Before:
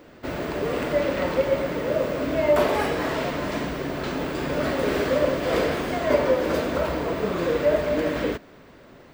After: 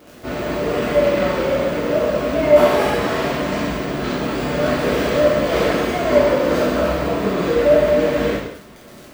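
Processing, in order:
surface crackle 48 per second −31 dBFS
reverb whose tail is shaped and stops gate 270 ms falling, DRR −7.5 dB
level −2.5 dB

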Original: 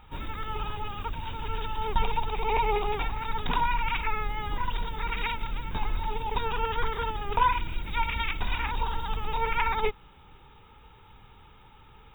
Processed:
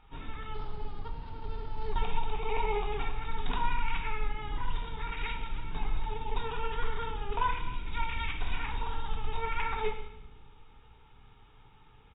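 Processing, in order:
0:00.54–0:01.92: running median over 25 samples
on a send at −2.5 dB: convolution reverb RT60 0.90 s, pre-delay 3 ms
on the sum: downsampling to 11,025 Hz
level −8 dB

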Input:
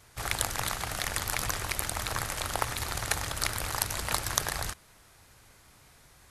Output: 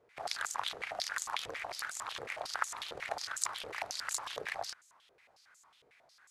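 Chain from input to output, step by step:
band-pass on a step sequencer 11 Hz 470–7,100 Hz
level +4.5 dB

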